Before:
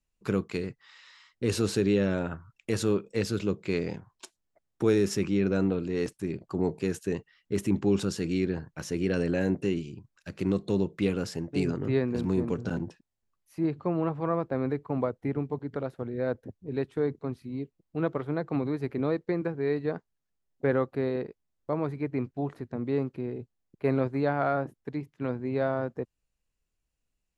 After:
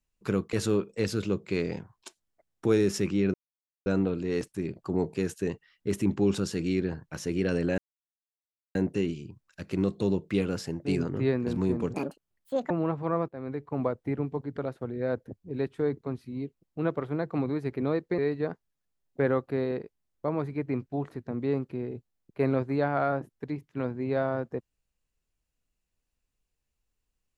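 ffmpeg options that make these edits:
ffmpeg -i in.wav -filter_complex "[0:a]asplit=8[link_01][link_02][link_03][link_04][link_05][link_06][link_07][link_08];[link_01]atrim=end=0.532[link_09];[link_02]atrim=start=2.698:end=5.51,asetpts=PTS-STARTPTS,afade=type=out:start_time=2.808:duration=0.004:curve=hsin,apad=pad_dur=0.52[link_10];[link_03]atrim=start=5.51:end=9.43,asetpts=PTS-STARTPTS,afade=type=in:duration=0.004:curve=hsin,afade=type=out:start_time=3.916:duration=0.004:curve=hsin,apad=pad_dur=0.97[link_11];[link_04]atrim=start=9.43:end=12.624,asetpts=PTS-STARTPTS,afade=type=in:duration=0.004:curve=hsin[link_12];[link_05]atrim=start=12.62:end=13.88,asetpts=PTS-STARTPTS,asetrate=72765,aresample=44100,atrim=end_sample=33676,asetpts=PTS-STARTPTS[link_13];[link_06]atrim=start=13.876:end=14.46,asetpts=PTS-STARTPTS,afade=type=out:start_time=0.58:duration=0.004:curve=hsin:silence=0.177828[link_14];[link_07]atrim=start=14.46:end=19.362,asetpts=PTS-STARTPTS,afade=type=in:duration=0.54:silence=0.177828[link_15];[link_08]atrim=start=19.628[link_16];[link_10][link_11][link_12]concat=n=3:v=0:a=1[link_17];[link_09][link_17]acrossfade=duration=0.004:curve1=hsin:curve2=hsin[link_18];[link_18][link_13]acrossfade=duration=0.004:curve1=hsin:curve2=hsin[link_19];[link_14][link_15]concat=n=2:v=0:a=1[link_20];[link_19][link_20]acrossfade=duration=0.004:curve1=hsin:curve2=hsin[link_21];[link_21][link_16]acrossfade=duration=0.004:curve1=hsin:curve2=hsin" out.wav

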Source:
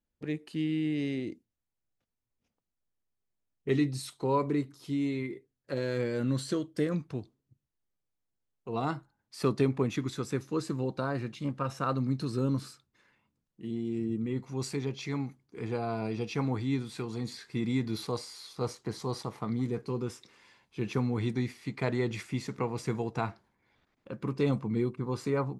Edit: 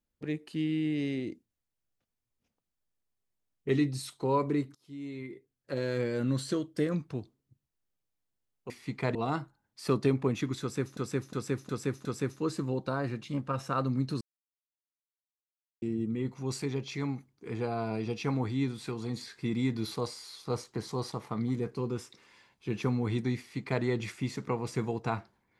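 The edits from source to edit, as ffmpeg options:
ffmpeg -i in.wav -filter_complex "[0:a]asplit=10[link_01][link_02][link_03][link_04][link_05][link_06][link_07][link_08][link_09][link_10];[link_01]atrim=end=4.75,asetpts=PTS-STARTPTS,afade=type=out:start_time=4.746:duration=0.004:curve=hsin:silence=0.0749894[link_11];[link_02]atrim=start=4.75:end=8.702,asetpts=PTS-STARTPTS,afade=type=in:duration=1.07:silence=0.0749894[link_12];[link_03]atrim=start=21.488:end=21.942[link_13];[link_04]atrim=start=8.698:end=10.522[link_14];[link_05]atrim=start=10.158:end=10.522[link_15];[link_06]atrim=start=10.158:end=10.522[link_16];[link_07]atrim=start=10.158:end=10.522[link_17];[link_08]atrim=start=10.158:end=12.32,asetpts=PTS-STARTPTS,afade=type=out:start_time=2.158:duration=0.004:curve=hsin[link_18];[link_09]atrim=start=12.32:end=13.93,asetpts=PTS-STARTPTS,volume=0[link_19];[link_10]atrim=start=13.93,asetpts=PTS-STARTPTS,afade=type=in:duration=0.004:curve=hsin[link_20];[link_11][link_12]concat=n=2:v=0:a=1[link_21];[link_21][link_13]acrossfade=duration=0.004:curve1=hsin:curve2=hsin[link_22];[link_22][link_14]acrossfade=duration=0.004:curve1=hsin:curve2=hsin[link_23];[link_23][link_15]acrossfade=duration=0.004:curve1=hsin:curve2=hsin[link_24];[link_24][link_16]acrossfade=duration=0.004:curve1=hsin:curve2=hsin[link_25];[link_25][link_17]acrossfade=duration=0.004:curve1=hsin:curve2=hsin[link_26];[link_18][link_19][link_20]concat=n=3:v=0:a=1[link_27];[link_26][link_27]acrossfade=duration=0.004:curve1=hsin:curve2=hsin" out.wav

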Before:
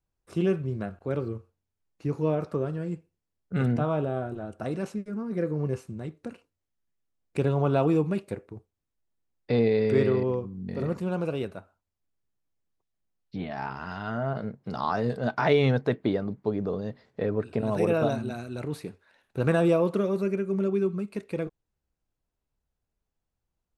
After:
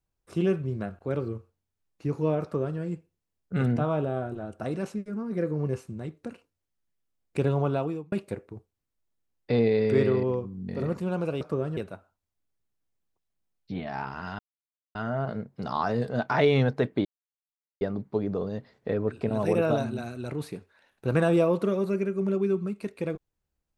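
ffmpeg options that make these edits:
ffmpeg -i in.wav -filter_complex "[0:a]asplit=6[link_01][link_02][link_03][link_04][link_05][link_06];[link_01]atrim=end=8.12,asetpts=PTS-STARTPTS,afade=type=out:start_time=7.55:duration=0.57[link_07];[link_02]atrim=start=8.12:end=11.412,asetpts=PTS-STARTPTS,afade=type=in:duration=0.004:curve=hsin[link_08];[link_03]atrim=start=2.428:end=2.792[link_09];[link_04]atrim=start=11.408:end=14.03,asetpts=PTS-STARTPTS,afade=type=out:start_time=2.618:duration=0.004:curve=hsin,apad=pad_dur=0.56[link_10];[link_05]atrim=start=14.03:end=16.13,asetpts=PTS-STARTPTS,afade=type=in:duration=0.004:curve=hsin,afade=type=out:start_time=2.096:duration=0.004:curve=hsin,apad=pad_dur=0.76[link_11];[link_06]atrim=start=16.13,asetpts=PTS-STARTPTS,afade=type=in:duration=0.004:curve=hsin[link_12];[link_07][link_08]concat=n=2:v=0:a=1[link_13];[link_13][link_09]acrossfade=duration=0.004:curve1=hsin:curve2=hsin[link_14];[link_10][link_11][link_12]concat=n=3:v=0:a=1[link_15];[link_14][link_15]acrossfade=duration=0.004:curve1=hsin:curve2=hsin" out.wav

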